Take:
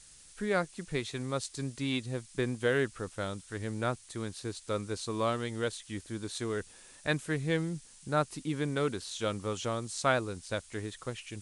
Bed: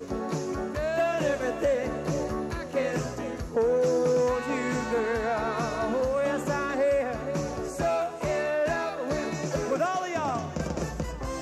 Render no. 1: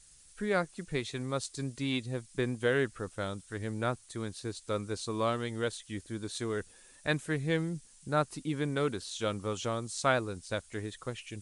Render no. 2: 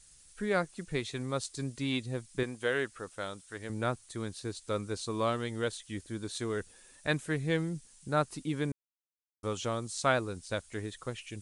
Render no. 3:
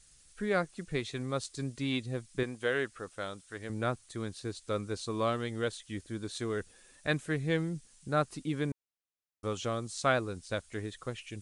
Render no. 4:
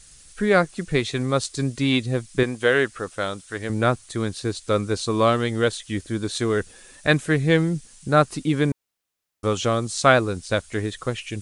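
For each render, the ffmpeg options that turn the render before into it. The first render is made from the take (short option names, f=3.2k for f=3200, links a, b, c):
-af "afftdn=nr=6:nf=-56"
-filter_complex "[0:a]asettb=1/sr,asplit=3[a][b][c];[a]atrim=end=2.434[d];[b]atrim=start=2.43:end=3.7,asetpts=PTS-STARTPTS,afade=t=in:d=0.004:c=qsin,afade=t=out:st=1.266:d=0.004:c=qsin,lowshelf=f=280:g=-11[e];[c]atrim=start=3.696[f];[d][e]acrossfade=d=0.004:c1=hsin:c2=qsin[g];[g][f]acrossfade=d=0.004:c1=qsin:c2=hsin,asplit=3[h][i][j];[h]atrim=end=8.72,asetpts=PTS-STARTPTS,afade=t=out:st=8.716:d=0.004:c=hsin[k];[i]atrim=start=8.72:end=9.43,asetpts=PTS-STARTPTS,volume=0[l];[j]atrim=start=9.43,asetpts=PTS-STARTPTS,afade=t=in:d=0.004:c=hsin[m];[k][l][m]concat=n=3:v=0:a=1"
-af "highshelf=f=8.6k:g=-6.5,bandreject=f=920:w=13"
-af "volume=12dB"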